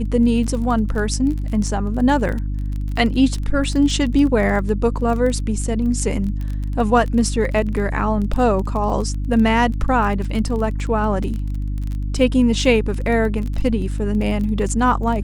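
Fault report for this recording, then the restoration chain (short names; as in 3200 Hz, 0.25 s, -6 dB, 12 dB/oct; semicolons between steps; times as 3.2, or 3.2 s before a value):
crackle 24/s -25 dBFS
hum 50 Hz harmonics 6 -23 dBFS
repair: de-click; de-hum 50 Hz, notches 6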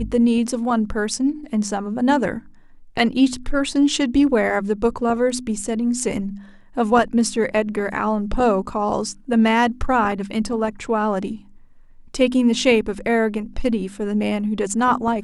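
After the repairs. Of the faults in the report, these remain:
none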